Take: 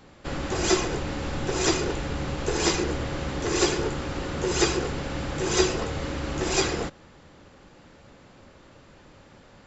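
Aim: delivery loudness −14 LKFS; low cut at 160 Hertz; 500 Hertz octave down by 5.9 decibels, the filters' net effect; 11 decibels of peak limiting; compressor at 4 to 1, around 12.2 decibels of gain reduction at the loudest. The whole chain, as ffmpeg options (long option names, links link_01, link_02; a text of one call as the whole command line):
ffmpeg -i in.wav -af "highpass=160,equalizer=frequency=500:width_type=o:gain=-8.5,acompressor=threshold=-35dB:ratio=4,volume=28dB,alimiter=limit=-5.5dB:level=0:latency=1" out.wav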